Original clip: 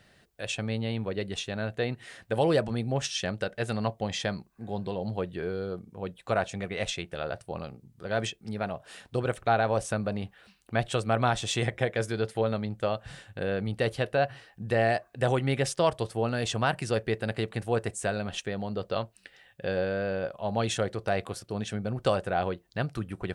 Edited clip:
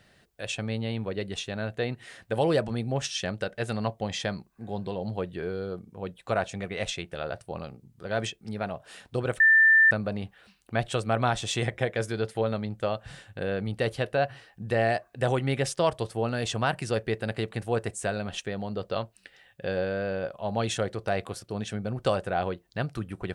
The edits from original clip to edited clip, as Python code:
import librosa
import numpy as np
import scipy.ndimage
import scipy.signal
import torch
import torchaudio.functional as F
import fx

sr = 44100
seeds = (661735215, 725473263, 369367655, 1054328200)

y = fx.edit(x, sr, fx.bleep(start_s=9.4, length_s=0.51, hz=1780.0, db=-14.5), tone=tone)